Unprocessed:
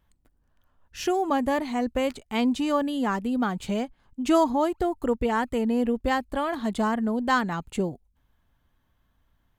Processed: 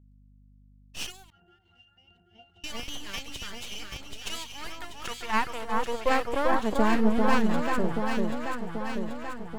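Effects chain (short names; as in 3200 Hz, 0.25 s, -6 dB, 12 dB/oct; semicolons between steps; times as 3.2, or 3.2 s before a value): high-pass sweep 2800 Hz -> 62 Hz, 4.35–8.23; half-wave rectifier; expander -57 dBFS; on a send: echo with dull and thin repeats by turns 0.392 s, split 1600 Hz, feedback 78%, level -2 dB; on the sum: hum 50 Hz, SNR 29 dB; 1.3–2.64 octave resonator F, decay 0.26 s; in parallel at -11 dB: Schmitt trigger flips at -30 dBFS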